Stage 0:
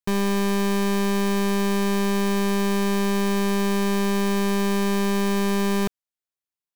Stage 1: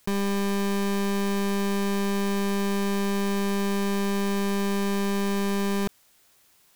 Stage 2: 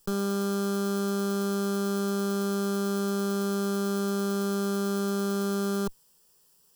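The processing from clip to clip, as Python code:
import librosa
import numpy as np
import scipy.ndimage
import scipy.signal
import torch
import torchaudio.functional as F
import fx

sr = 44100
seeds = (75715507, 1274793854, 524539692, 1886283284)

y1 = fx.env_flatten(x, sr, amount_pct=50)
y1 = F.gain(torch.from_numpy(y1), -3.5).numpy()
y2 = fx.lower_of_two(y1, sr, delay_ms=0.38)
y2 = fx.fixed_phaser(y2, sr, hz=440.0, stages=8)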